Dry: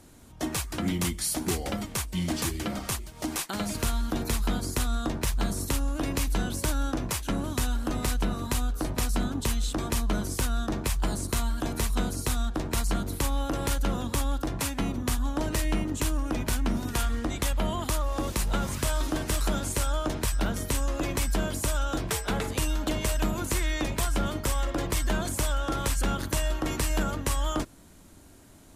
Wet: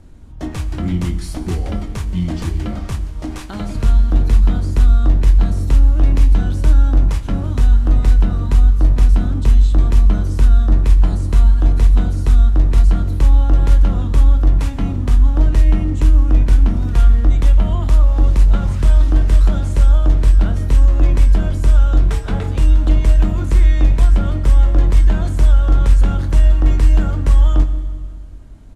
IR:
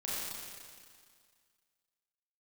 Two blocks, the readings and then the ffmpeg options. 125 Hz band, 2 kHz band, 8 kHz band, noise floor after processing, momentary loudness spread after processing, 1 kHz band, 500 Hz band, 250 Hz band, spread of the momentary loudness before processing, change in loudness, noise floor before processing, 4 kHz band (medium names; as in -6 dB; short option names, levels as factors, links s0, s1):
+17.0 dB, +0.5 dB, -8.0 dB, -28 dBFS, 9 LU, +1.5 dB, +3.0 dB, +6.5 dB, 2 LU, +14.0 dB, -50 dBFS, -2.5 dB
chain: -filter_complex "[0:a]aemphasis=mode=reproduction:type=bsi,asplit=2[s0][s1];[s1]adelay=23,volume=0.299[s2];[s0][s2]amix=inputs=2:normalize=0,asplit=2[s3][s4];[1:a]atrim=start_sample=2205,lowshelf=f=110:g=11[s5];[s4][s5]afir=irnorm=-1:irlink=0,volume=0.188[s6];[s3][s6]amix=inputs=2:normalize=0"